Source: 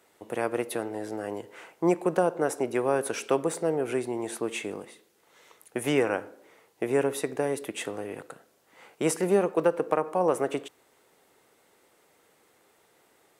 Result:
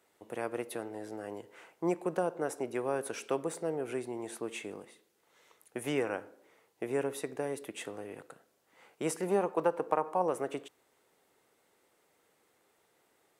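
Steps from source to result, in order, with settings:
0:09.27–0:10.22: parametric band 900 Hz +8 dB 0.77 octaves
level −7.5 dB

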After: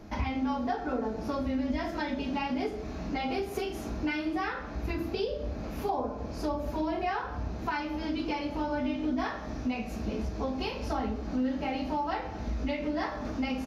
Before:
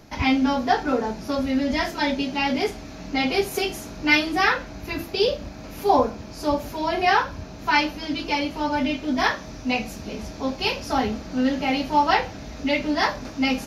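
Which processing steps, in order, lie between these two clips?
on a send at −5 dB: convolution reverb RT60 0.60 s, pre-delay 3 ms
on the sum: downward compressor, threshold −28 dBFS, peak gain reduction 14.5 dB
high-shelf EQ 2,300 Hz −10.5 dB
double-tracking delay 39 ms −12 dB

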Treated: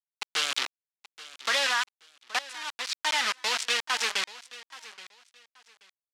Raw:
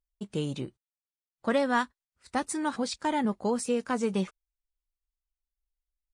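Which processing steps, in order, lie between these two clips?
0:00.51–0:01.67: converter with a step at zero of −32 dBFS
bit reduction 5 bits
high-pass filter 1,300 Hz 12 dB per octave
0:02.39–0:03.33: fade in
brickwall limiter −23.5 dBFS, peak gain reduction 7.5 dB
low-pass filter 4,400 Hz 12 dB per octave
high-shelf EQ 2,400 Hz +9.5 dB
repeating echo 828 ms, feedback 25%, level −18 dB
wow of a warped record 45 rpm, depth 100 cents
level +6.5 dB

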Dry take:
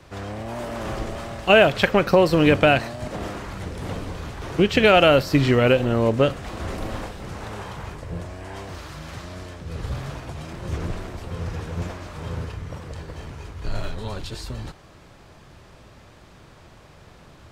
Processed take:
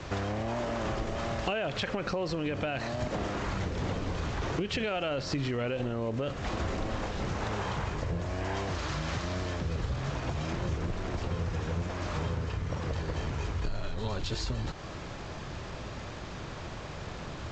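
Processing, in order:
brickwall limiter −15.5 dBFS, peak gain reduction 11.5 dB
downward compressor 10 to 1, threshold −37 dBFS, peak gain reduction 17 dB
level +8 dB
G.722 64 kbit/s 16,000 Hz

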